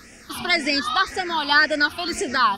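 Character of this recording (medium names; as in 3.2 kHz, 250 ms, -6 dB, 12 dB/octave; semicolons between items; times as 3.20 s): phasing stages 6, 1.9 Hz, lowest notch 510–1100 Hz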